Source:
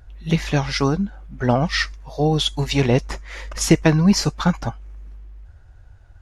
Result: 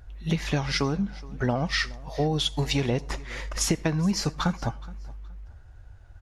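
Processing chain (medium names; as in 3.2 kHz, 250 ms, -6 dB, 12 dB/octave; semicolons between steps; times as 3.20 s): compression 6:1, threshold -20 dBFS, peak gain reduction 11.5 dB; feedback delay 421 ms, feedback 26%, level -21.5 dB; on a send at -23.5 dB: reverberation RT60 0.35 s, pre-delay 63 ms; on the sum: trim -1.5 dB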